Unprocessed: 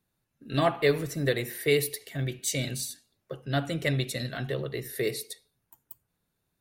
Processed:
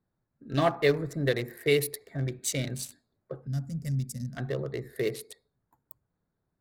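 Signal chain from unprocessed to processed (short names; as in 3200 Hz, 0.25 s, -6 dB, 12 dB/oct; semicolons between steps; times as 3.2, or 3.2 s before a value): Wiener smoothing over 15 samples; spectral gain 3.47–4.37, 270–4600 Hz -21 dB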